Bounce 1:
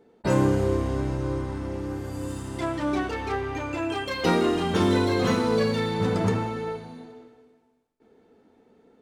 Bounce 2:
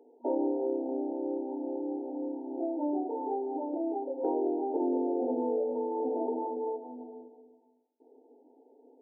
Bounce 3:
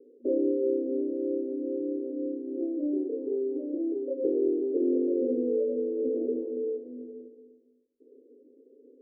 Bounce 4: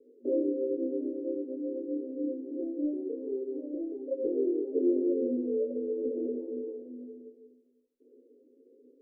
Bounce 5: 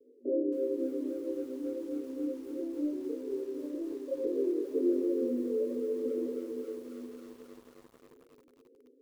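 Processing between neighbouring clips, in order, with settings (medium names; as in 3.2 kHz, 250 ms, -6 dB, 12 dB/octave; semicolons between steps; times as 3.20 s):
FFT band-pass 240–940 Hz; compression 2:1, threshold -31 dBFS, peak gain reduction 6.5 dB
rippled Chebyshev low-pass 560 Hz, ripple 3 dB; bass shelf 120 Hz +8.5 dB; trim +4.5 dB
chorus voices 6, 0.87 Hz, delay 14 ms, depth 3.1 ms
vibrato 0.52 Hz 13 cents; bit-crushed delay 269 ms, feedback 80%, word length 8-bit, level -14 dB; trim -2 dB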